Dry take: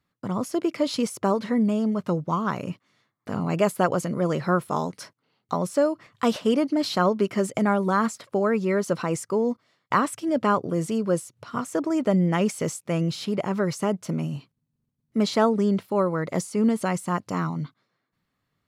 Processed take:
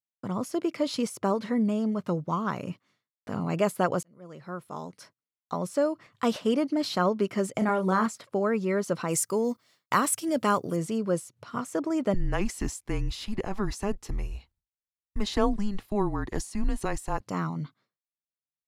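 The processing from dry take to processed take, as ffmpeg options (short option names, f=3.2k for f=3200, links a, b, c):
-filter_complex "[0:a]asettb=1/sr,asplit=3[a][b][c];[a]atrim=end=7.584[d];[b]atrim=start=7.58:end=8.06,asetpts=PTS-STARTPTS,afade=t=in:d=0.004:c=qsin,afade=t=out:st=0.476:d=0.004:c=qsin,asplit=2[e][f];[f]adelay=32,volume=-6.5dB[g];[e][g]amix=inputs=2:normalize=0,atrim=end_sample=21168[h];[c]atrim=start=8.056[i];[d][h]acrossfade=d=0.004:c1=hsin:c2=qsin[j];[j][i]acrossfade=d=0.004:c1=qsin:c2=hsin,asplit=3[k][l][m];[k]afade=t=out:st=9.08:d=0.02[n];[l]aemphasis=mode=production:type=75kf,afade=t=in:st=9.08:d=0.02,afade=t=out:st=10.75:d=0.02[o];[m]afade=t=in:st=10.75:d=0.02[p];[n][o][p]amix=inputs=3:normalize=0,asettb=1/sr,asplit=3[q][r][s];[q]atrim=end=12.144[t];[r]atrim=start=12.14:end=17.21,asetpts=PTS-STARTPTS,afade=t=in:d=0.004:c=qsin,afade=t=out:st=5.066:d=0.004:c=qsin,afreqshift=-200[u];[s]atrim=start=17.206[v];[t][u]acrossfade=d=0.004:c1=hsin:c2=qsin[w];[w][v]acrossfade=d=0.004:c1=qsin:c2=hsin,asplit=2[x][y];[x]atrim=end=4.03,asetpts=PTS-STARTPTS,afade=t=out:st=4.026:d=0.004:c=hsin[z];[y]atrim=start=4.03,asetpts=PTS-STARTPTS,afade=t=in:d=1.88[aa];[z][aa]concat=n=2:v=0:a=1,agate=range=-33dB:threshold=-54dB:ratio=3:detection=peak,volume=-3.5dB"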